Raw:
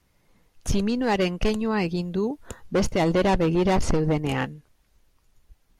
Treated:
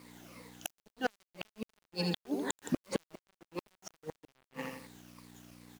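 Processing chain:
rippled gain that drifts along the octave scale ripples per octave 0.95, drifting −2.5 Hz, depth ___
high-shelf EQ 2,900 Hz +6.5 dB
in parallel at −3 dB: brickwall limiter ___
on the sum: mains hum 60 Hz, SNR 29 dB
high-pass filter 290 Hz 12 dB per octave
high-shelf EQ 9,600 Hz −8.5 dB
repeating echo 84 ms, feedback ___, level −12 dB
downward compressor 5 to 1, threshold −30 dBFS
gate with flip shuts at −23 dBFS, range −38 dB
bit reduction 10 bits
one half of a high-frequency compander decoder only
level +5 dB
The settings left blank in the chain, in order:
14 dB, −19.5 dBFS, 46%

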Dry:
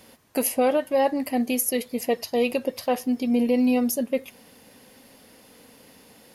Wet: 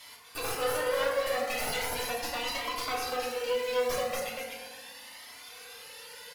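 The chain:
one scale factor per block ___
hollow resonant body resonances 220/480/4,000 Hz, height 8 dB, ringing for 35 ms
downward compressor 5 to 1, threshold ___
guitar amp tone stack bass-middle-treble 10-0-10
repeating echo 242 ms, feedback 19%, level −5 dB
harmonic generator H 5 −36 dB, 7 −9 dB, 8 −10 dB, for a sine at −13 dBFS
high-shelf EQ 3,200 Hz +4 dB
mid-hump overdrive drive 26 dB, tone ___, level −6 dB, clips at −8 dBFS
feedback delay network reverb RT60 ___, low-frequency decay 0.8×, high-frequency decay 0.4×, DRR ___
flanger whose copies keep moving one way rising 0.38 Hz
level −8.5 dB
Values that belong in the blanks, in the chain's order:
5 bits, −19 dBFS, 2,000 Hz, 1.5 s, −3.5 dB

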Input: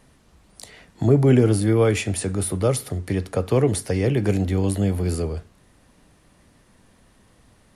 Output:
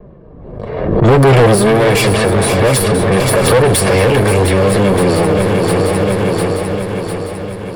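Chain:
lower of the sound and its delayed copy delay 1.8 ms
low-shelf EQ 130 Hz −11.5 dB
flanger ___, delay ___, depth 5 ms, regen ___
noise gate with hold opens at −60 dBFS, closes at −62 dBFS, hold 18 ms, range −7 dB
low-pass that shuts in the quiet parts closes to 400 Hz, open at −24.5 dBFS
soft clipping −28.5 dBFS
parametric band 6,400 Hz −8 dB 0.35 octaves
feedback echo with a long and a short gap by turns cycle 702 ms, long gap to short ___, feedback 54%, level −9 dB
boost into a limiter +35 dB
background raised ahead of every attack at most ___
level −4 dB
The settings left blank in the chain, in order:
0.6 Hz, 4.7 ms, −23%, 3 to 1, 43 dB per second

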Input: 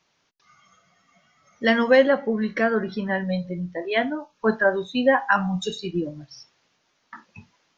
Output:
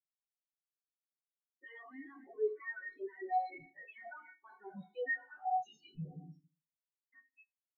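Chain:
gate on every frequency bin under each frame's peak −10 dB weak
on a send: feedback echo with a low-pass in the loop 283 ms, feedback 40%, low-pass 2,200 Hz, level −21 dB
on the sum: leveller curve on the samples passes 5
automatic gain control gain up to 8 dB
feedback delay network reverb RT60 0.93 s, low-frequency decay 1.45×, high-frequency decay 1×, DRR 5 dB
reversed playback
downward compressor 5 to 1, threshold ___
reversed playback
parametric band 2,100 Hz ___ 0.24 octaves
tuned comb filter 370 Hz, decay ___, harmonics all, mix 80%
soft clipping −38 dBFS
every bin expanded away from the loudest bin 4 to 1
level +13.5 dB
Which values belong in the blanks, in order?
−21 dBFS, +6 dB, 0.4 s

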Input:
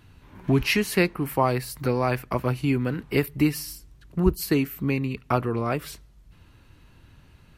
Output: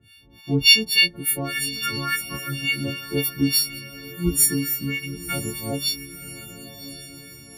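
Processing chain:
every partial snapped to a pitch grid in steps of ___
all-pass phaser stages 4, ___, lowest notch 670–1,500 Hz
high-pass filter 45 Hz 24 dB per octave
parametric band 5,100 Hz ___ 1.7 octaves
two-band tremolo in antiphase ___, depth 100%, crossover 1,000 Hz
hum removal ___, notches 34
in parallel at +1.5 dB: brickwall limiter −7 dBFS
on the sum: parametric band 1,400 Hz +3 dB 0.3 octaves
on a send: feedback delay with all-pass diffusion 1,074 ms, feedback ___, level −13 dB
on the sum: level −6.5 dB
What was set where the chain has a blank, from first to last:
4 semitones, 0.38 Hz, +13.5 dB, 3.5 Hz, 80.99 Hz, 48%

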